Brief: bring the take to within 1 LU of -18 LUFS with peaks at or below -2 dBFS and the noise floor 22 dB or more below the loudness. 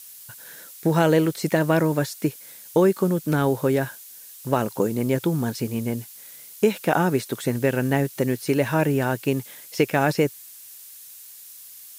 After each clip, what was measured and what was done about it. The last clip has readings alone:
noise floor -44 dBFS; noise floor target -45 dBFS; loudness -23.0 LUFS; peak -6.0 dBFS; loudness target -18.0 LUFS
-> noise print and reduce 6 dB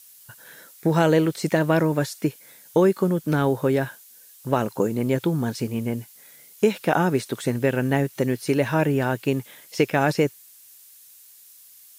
noise floor -50 dBFS; loudness -23.0 LUFS; peak -6.0 dBFS; loudness target -18.0 LUFS
-> gain +5 dB; limiter -2 dBFS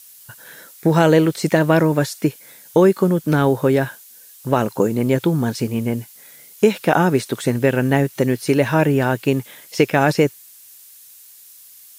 loudness -18.0 LUFS; peak -2.0 dBFS; noise floor -45 dBFS

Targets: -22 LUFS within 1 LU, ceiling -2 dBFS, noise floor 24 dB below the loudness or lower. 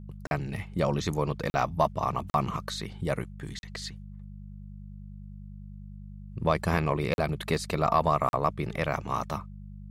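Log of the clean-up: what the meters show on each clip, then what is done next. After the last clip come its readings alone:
dropouts 6; longest dropout 41 ms; hum 50 Hz; harmonics up to 200 Hz; hum level -40 dBFS; loudness -29.5 LUFS; peak -11.0 dBFS; loudness target -22.0 LUFS
-> interpolate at 0.27/1.5/2.3/3.59/7.14/8.29, 41 ms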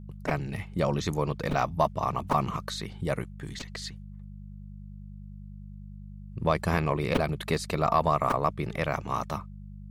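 dropouts 0; hum 50 Hz; harmonics up to 200 Hz; hum level -40 dBFS
-> de-hum 50 Hz, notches 4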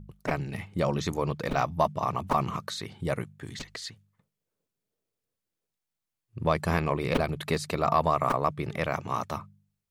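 hum none; loudness -29.5 LUFS; peak -10.5 dBFS; loudness target -22.0 LUFS
-> gain +7.5 dB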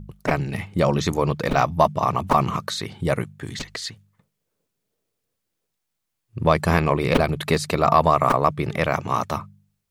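loudness -22.0 LUFS; peak -3.0 dBFS; noise floor -79 dBFS

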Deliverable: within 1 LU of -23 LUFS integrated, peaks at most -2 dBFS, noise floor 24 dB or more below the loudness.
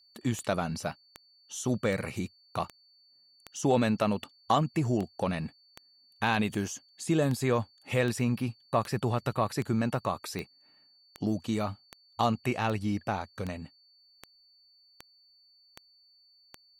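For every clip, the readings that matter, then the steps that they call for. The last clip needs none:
clicks 22; steady tone 4500 Hz; tone level -60 dBFS; loudness -31.0 LUFS; peak -11.5 dBFS; loudness target -23.0 LUFS
-> de-click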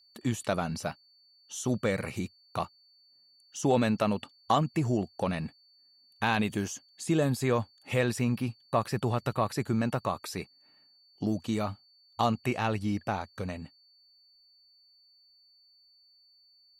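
clicks 0; steady tone 4500 Hz; tone level -60 dBFS
-> notch 4500 Hz, Q 30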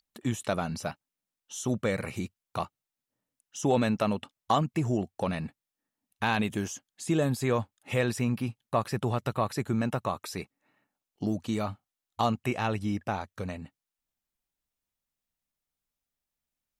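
steady tone none; loudness -31.0 LUFS; peak -11.5 dBFS; loudness target -23.0 LUFS
-> gain +8 dB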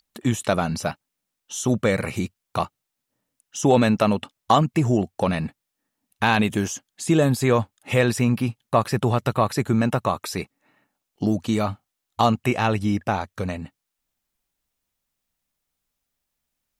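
loudness -23.0 LUFS; peak -3.5 dBFS; noise floor -82 dBFS

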